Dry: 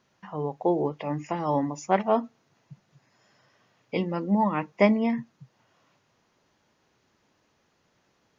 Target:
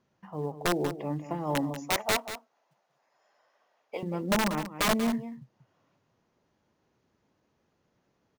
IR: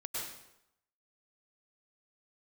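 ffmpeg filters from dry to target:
-filter_complex "[0:a]tiltshelf=frequency=970:gain=4.5,asplit=2[link_01][link_02];[link_02]acrusher=bits=5:mode=log:mix=0:aa=0.000001,volume=-11dB[link_03];[link_01][link_03]amix=inputs=2:normalize=0,asettb=1/sr,asplit=3[link_04][link_05][link_06];[link_04]atrim=end=1.884[link_07];[link_05]atrim=start=1.88:end=4.03,asetpts=PTS-STARTPTS,afade=type=in:duration=0.004:curve=qsin,afade=type=out:start_time=2.146:duration=0.004:curve=qsin,highpass=frequency=680:width_type=q:width=1.6[link_08];[link_06]atrim=start=4.026[link_09];[link_07][link_08]acrossfade=duration=0.004:curve1=hsin:curve2=qsin[link_10];[link_10][link_09]acrossfade=duration=0.004:curve1=qsin:curve2=hsin,aeval=exprs='(mod(3.55*val(0)+1,2)-1)/3.55':channel_layout=same,aecho=1:1:188:0.266,volume=-8.5dB"

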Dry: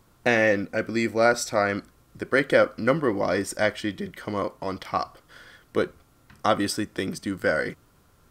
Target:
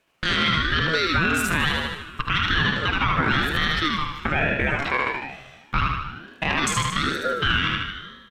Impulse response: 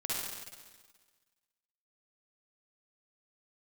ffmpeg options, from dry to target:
-filter_complex "[0:a]highpass=frequency=340:width=0.5412,highpass=frequency=340:width=1.3066,afwtdn=0.0158,lowpass=10000,highshelf=frequency=2800:gain=-12,acrossover=split=950[link_01][link_02];[link_02]acontrast=90[link_03];[link_01][link_03]amix=inputs=2:normalize=0,asetrate=64194,aresample=44100,atempo=0.686977,acompressor=threshold=-25dB:ratio=5,aecho=1:1:76|152|228|304|380|456|532:0.562|0.315|0.176|0.0988|0.0553|0.031|0.0173,asplit=2[link_04][link_05];[1:a]atrim=start_sample=2205[link_06];[link_05][link_06]afir=irnorm=-1:irlink=0,volume=-15.5dB[link_07];[link_04][link_07]amix=inputs=2:normalize=0,alimiter=level_in=20dB:limit=-1dB:release=50:level=0:latency=1,aeval=exprs='val(0)*sin(2*PI*770*n/s+770*0.25/1.1*sin(2*PI*1.1*n/s))':channel_layout=same,volume=-8dB"

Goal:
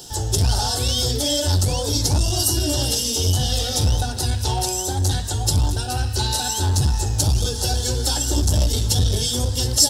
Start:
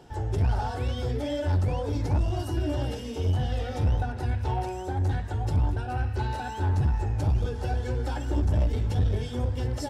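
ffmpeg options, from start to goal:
ffmpeg -i in.wav -af "aexciter=amount=6:drive=9.6:freq=3400,volume=5dB" out.wav

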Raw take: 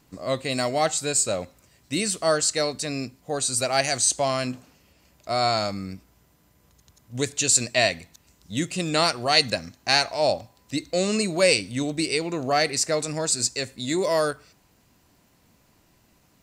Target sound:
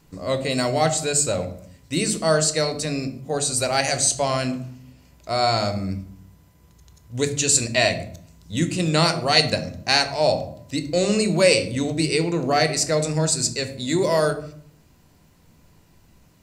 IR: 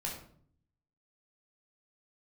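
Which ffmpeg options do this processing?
-filter_complex "[0:a]asplit=2[link_01][link_02];[1:a]atrim=start_sample=2205,lowshelf=frequency=360:gain=9.5[link_03];[link_02][link_03]afir=irnorm=-1:irlink=0,volume=-6.5dB[link_04];[link_01][link_04]amix=inputs=2:normalize=0,volume=-1dB"

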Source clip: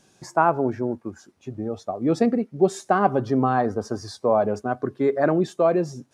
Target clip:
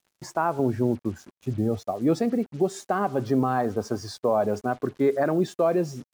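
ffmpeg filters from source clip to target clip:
ffmpeg -i in.wav -filter_complex "[0:a]asettb=1/sr,asplit=3[link_01][link_02][link_03];[link_01]atrim=end=0.594[link_04];[link_02]atrim=start=0.59:end=1.8,asetpts=PTS-STARTPTS,afade=type=in:duration=0.004:curve=qsin,afade=type=out:start_time=1.206:duration=0.004:curve=qsin,lowshelf=frequency=220:gain=10.5[link_05];[link_03]atrim=start=1.796[link_06];[link_04][link_05]acrossfade=duration=0.004:curve1=hsin:curve2=qsin[link_07];[link_07][link_06]acrossfade=duration=0.004:curve1=qsin:curve2=hsin,alimiter=limit=-13dB:level=0:latency=1:release=242,acrusher=bits=7:mix=0:aa=0.5" out.wav

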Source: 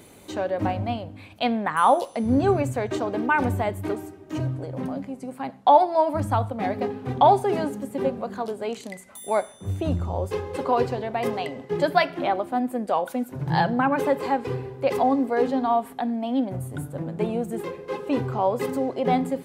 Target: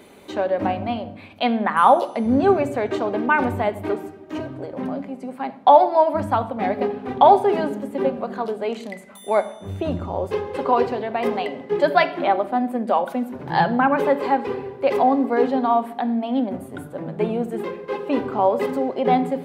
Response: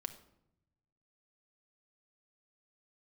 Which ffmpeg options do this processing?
-filter_complex "[0:a]asplit=2[link_01][link_02];[link_02]highpass=frequency=130:width=0.5412,highpass=frequency=130:width=1.3066[link_03];[1:a]atrim=start_sample=2205,lowpass=4500[link_04];[link_03][link_04]afir=irnorm=-1:irlink=0,volume=6dB[link_05];[link_01][link_05]amix=inputs=2:normalize=0,volume=-4dB"

